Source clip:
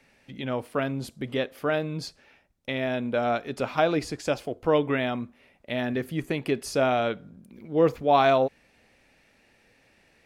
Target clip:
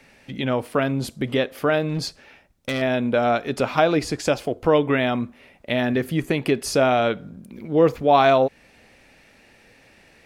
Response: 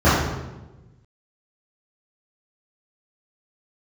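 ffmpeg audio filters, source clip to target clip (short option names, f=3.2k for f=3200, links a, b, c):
-filter_complex "[0:a]asplit=2[a][b];[b]acompressor=threshold=-29dB:ratio=6,volume=1dB[c];[a][c]amix=inputs=2:normalize=0,asettb=1/sr,asplit=3[d][e][f];[d]atrim=end=1.894[g];[e]atrim=start=1.89:end=2.82,asetpts=PTS-STARTPTS,afade=t=in:d=0.004:c=qsin,afade=t=out:st=0.926:d=0.004:c=qsin,volume=22dB,asoftclip=hard,volume=-22dB[h];[f]atrim=start=2.816[i];[g][h]acrossfade=d=0.004:c1=hsin:c2=qsin[j];[j][i]acrossfade=d=0.004:c1=qsin:c2=hsin,volume=2dB"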